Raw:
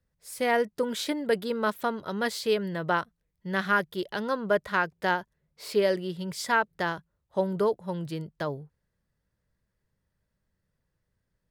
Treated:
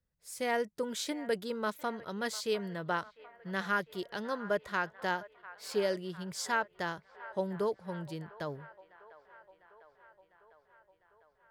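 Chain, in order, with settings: band-limited delay 0.701 s, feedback 67%, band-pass 1200 Hz, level -16 dB; dynamic EQ 6700 Hz, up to +7 dB, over -54 dBFS, Q 1.5; gain -7 dB

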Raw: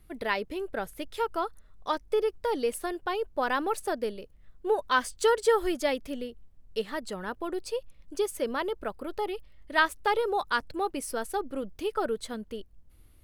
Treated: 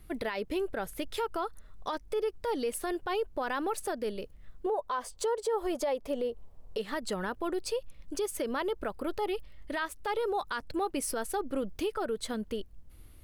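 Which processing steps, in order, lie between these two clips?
4.66–6.78 band shelf 690 Hz +10.5 dB; compressor 2.5:1, threshold -33 dBFS, peak gain reduction 16 dB; limiter -28 dBFS, peak gain reduction 10 dB; gain +4.5 dB

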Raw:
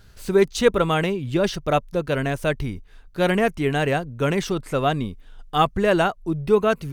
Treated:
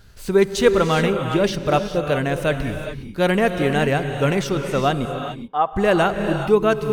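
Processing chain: 5.05–5.73 band-pass 800 Hz, Q 1.6; non-linear reverb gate 0.44 s rising, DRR 6.5 dB; gain +1.5 dB

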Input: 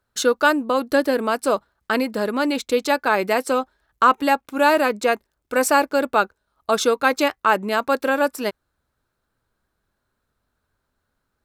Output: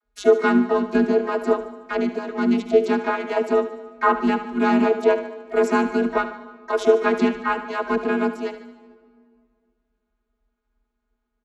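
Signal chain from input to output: vocoder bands 32, square 101 Hz; frequency shift -64 Hz; harmoniser -4 st -17 dB, +7 st -11 dB; feedback echo 74 ms, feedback 55%, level -12 dB; on a send at -18.5 dB: reverb RT60 2.2 s, pre-delay 85 ms

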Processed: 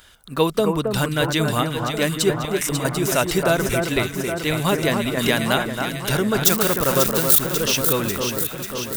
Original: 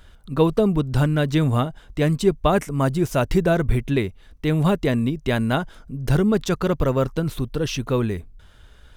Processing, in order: 6.44–7.39 switching spikes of -20 dBFS; tilt +3 dB/oct; 2.45–2.85 negative-ratio compressor -31 dBFS, ratio -1; on a send: echo with dull and thin repeats by turns 0.271 s, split 1800 Hz, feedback 81%, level -4.5 dB; 5.17–5.59 on the sum: three-band squash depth 70%; gain +2.5 dB

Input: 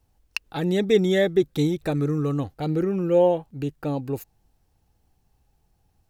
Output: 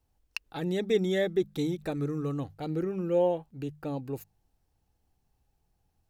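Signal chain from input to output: notches 50/100/150/200 Hz; gain -7 dB

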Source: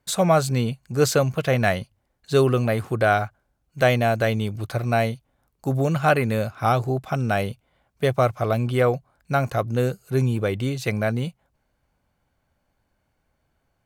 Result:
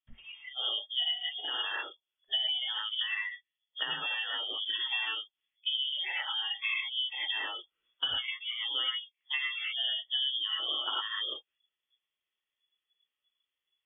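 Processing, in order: low shelf 130 Hz -9 dB; non-linear reverb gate 0.13 s rising, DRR -6 dB; compressor 20:1, threshold -28 dBFS, peak gain reduction 22.5 dB; spectral noise reduction 23 dB; inverted band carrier 3400 Hz

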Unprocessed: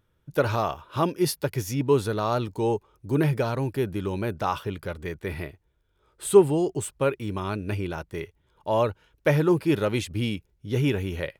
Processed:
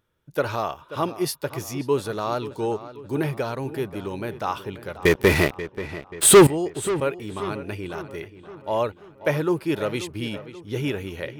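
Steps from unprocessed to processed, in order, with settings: low shelf 170 Hz -8.5 dB; 5.05–6.47 sample leveller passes 5; darkening echo 0.534 s, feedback 52%, low-pass 3800 Hz, level -14 dB

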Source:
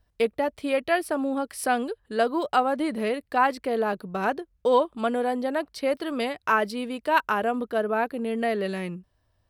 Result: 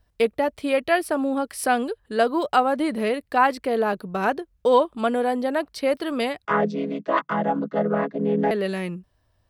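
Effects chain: 6.45–8.51 chord vocoder minor triad, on C#3; gain +3 dB

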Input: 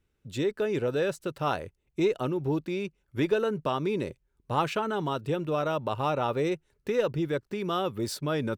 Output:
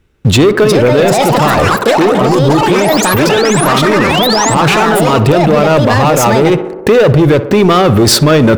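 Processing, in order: high shelf 5100 Hz -7 dB; in parallel at +1 dB: negative-ratio compressor -38 dBFS, ratio -1; on the sum: sample leveller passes 3; painted sound rise, 3.98–4.55, 1700–8600 Hz -25 dBFS; hard clip -13 dBFS, distortion -42 dB; echoes that change speed 0.458 s, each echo +6 st, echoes 3; on a send: tape echo 61 ms, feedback 83%, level -13.5 dB, low-pass 1700 Hz; on the sum: maximiser +14.5 dB; gain -1 dB

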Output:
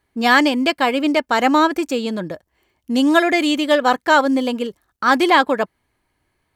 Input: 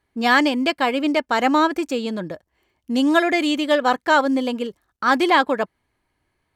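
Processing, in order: high shelf 9500 Hz +5 dB; gain +2.5 dB

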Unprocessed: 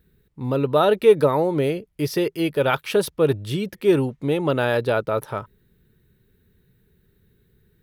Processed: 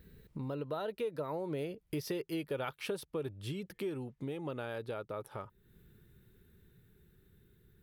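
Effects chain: Doppler pass-by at 2.18, 13 m/s, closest 8.7 m; compressor 4:1, threshold -56 dBFS, peak gain reduction 33 dB; gain +14 dB

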